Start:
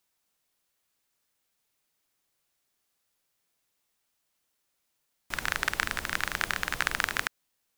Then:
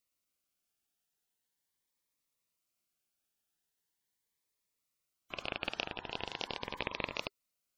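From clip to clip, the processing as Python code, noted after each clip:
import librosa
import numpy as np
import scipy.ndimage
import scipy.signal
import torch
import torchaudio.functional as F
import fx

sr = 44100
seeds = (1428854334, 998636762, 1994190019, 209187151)

y = x * np.sin(2.0 * np.pi * 1000.0 * np.arange(len(x)) / sr)
y = fx.spec_gate(y, sr, threshold_db=-15, keep='strong')
y = fx.notch_cascade(y, sr, direction='rising', hz=0.41)
y = F.gain(torch.from_numpy(y), -4.0).numpy()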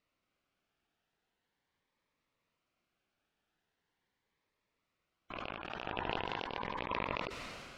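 y = fx.over_compress(x, sr, threshold_db=-45.0, ratio=-0.5)
y = scipy.signal.sosfilt(scipy.signal.butter(2, 2400.0, 'lowpass', fs=sr, output='sos'), y)
y = fx.sustainer(y, sr, db_per_s=25.0)
y = F.gain(torch.from_numpy(y), 5.0).numpy()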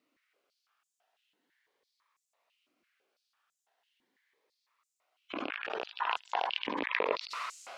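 y = fx.filter_held_highpass(x, sr, hz=6.0, low_hz=280.0, high_hz=7200.0)
y = F.gain(torch.from_numpy(y), 3.0).numpy()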